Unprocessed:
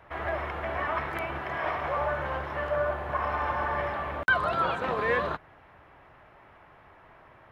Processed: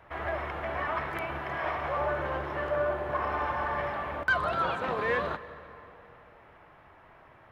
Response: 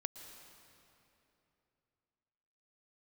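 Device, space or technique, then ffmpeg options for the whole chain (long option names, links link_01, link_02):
saturated reverb return: -filter_complex "[0:a]asplit=2[link_01][link_02];[1:a]atrim=start_sample=2205[link_03];[link_02][link_03]afir=irnorm=-1:irlink=0,asoftclip=type=tanh:threshold=-23dB,volume=-1.5dB[link_04];[link_01][link_04]amix=inputs=2:normalize=0,asettb=1/sr,asplit=3[link_05][link_06][link_07];[link_05]atrim=end=1.994[link_08];[link_06]atrim=start=1.99:end=3.45,asetpts=PTS-STARTPTS,afade=type=in:duration=0.004:curve=qsin,afade=type=out:start_time=1.456:duration=0.004:curve=qsin,equalizer=frequency=360:width=2.4:gain=7[link_09];[link_07]atrim=start=3.446[link_10];[link_08][link_09]acrossfade=duration=0.004:curve1=hsin:curve2=qsin[link_11];[link_11][link_10]acrossfade=duration=0.004:curve1=qsin:curve2=hsin,volume=-5.5dB"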